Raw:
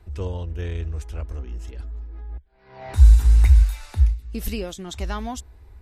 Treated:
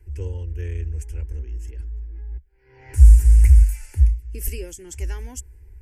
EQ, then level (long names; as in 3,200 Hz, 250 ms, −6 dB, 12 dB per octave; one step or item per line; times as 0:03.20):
dynamic equaliser 8,900 Hz, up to +6 dB, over −55 dBFS, Q 1.2
phaser with its sweep stopped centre 490 Hz, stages 4
phaser with its sweep stopped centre 1,600 Hz, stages 4
+3.0 dB